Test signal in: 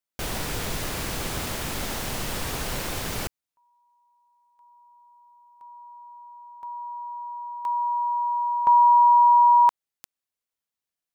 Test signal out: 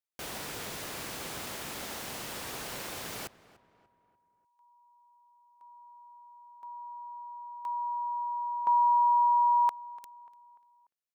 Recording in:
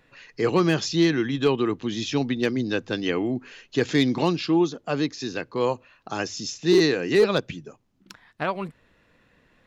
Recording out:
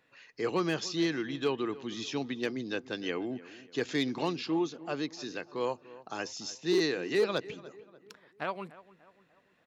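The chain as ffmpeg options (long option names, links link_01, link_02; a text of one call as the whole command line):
ffmpeg -i in.wav -filter_complex "[0:a]highpass=frequency=260:poles=1,asplit=2[link_01][link_02];[link_02]adelay=294,lowpass=frequency=2300:poles=1,volume=-18dB,asplit=2[link_03][link_04];[link_04]adelay=294,lowpass=frequency=2300:poles=1,volume=0.46,asplit=2[link_05][link_06];[link_06]adelay=294,lowpass=frequency=2300:poles=1,volume=0.46,asplit=2[link_07][link_08];[link_08]adelay=294,lowpass=frequency=2300:poles=1,volume=0.46[link_09];[link_03][link_05][link_07][link_09]amix=inputs=4:normalize=0[link_10];[link_01][link_10]amix=inputs=2:normalize=0,volume=-7.5dB" out.wav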